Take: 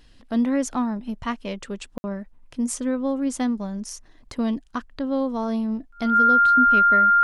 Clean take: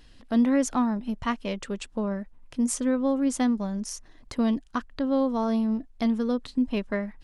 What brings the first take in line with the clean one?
notch filter 1,400 Hz, Q 30
ambience match 0:01.98–0:02.04

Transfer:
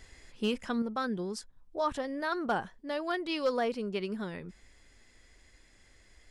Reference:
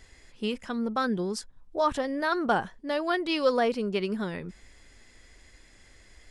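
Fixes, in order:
clipped peaks rebuilt −20.5 dBFS
level 0 dB, from 0:00.82 +5.5 dB

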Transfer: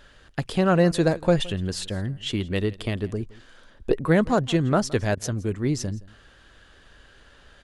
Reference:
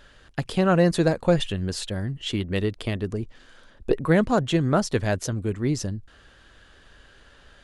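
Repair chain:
repair the gap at 0:05.15, 20 ms
echo removal 168 ms −21.5 dB

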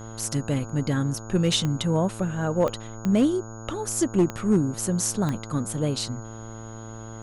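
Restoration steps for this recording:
clipped peaks rebuilt −13.5 dBFS
click removal
hum removal 111.7 Hz, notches 14
notch filter 6,700 Hz, Q 30

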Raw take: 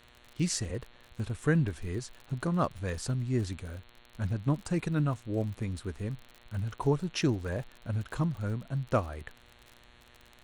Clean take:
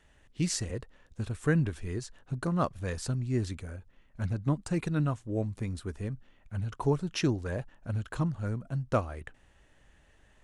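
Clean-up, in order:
click removal
hum removal 120.2 Hz, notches 36

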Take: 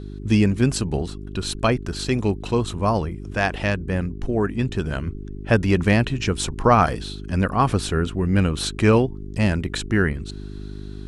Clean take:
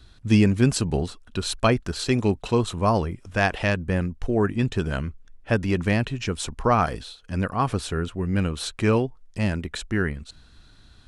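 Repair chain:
hum removal 50.3 Hz, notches 8
level 0 dB, from 0:05.07 −4.5 dB

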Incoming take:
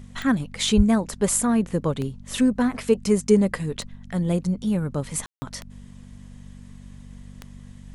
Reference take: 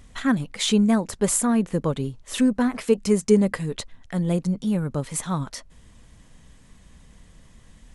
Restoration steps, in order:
click removal
hum removal 48.1 Hz, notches 5
0:00.76–0:00.88: high-pass filter 140 Hz 24 dB per octave
ambience match 0:05.26–0:05.42

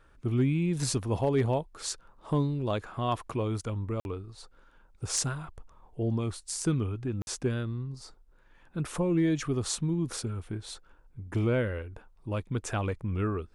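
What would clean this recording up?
clipped peaks rebuilt −18.5 dBFS
repair the gap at 0:04.00/0:07.22, 51 ms

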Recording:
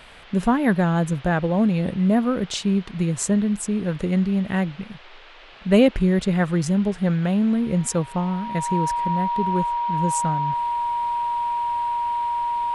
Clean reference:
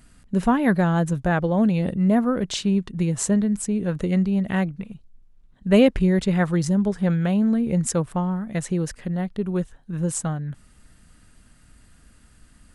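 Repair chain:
notch filter 950 Hz, Q 30
noise reduction from a noise print 12 dB

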